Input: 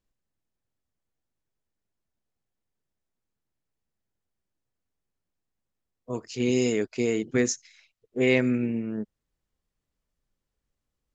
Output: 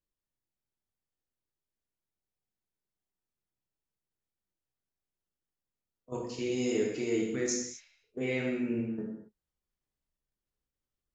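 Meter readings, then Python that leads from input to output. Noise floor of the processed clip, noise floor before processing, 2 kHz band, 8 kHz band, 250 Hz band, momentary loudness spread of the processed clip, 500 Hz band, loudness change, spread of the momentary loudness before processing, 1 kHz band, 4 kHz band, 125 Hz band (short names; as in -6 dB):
under -85 dBFS, -85 dBFS, -8.5 dB, n/a, -6.5 dB, 12 LU, -6.0 dB, -6.5 dB, 14 LU, -5.0 dB, -6.0 dB, -8.5 dB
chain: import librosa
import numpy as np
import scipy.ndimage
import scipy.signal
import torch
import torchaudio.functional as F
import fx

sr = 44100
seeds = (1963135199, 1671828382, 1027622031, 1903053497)

y = fx.level_steps(x, sr, step_db=15)
y = fx.rev_gated(y, sr, seeds[0], gate_ms=290, shape='falling', drr_db=-3.0)
y = F.gain(torch.from_numpy(y), -4.5).numpy()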